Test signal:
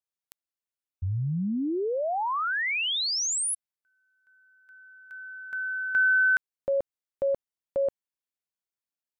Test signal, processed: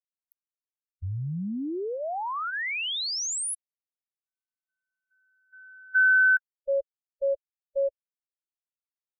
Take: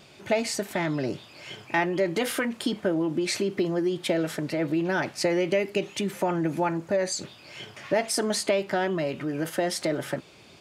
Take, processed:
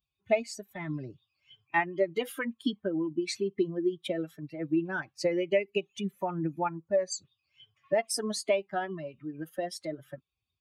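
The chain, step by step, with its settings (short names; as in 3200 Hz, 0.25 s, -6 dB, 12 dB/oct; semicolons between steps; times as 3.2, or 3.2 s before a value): per-bin expansion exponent 2; upward expander 1.5:1, over -42 dBFS; gain +2.5 dB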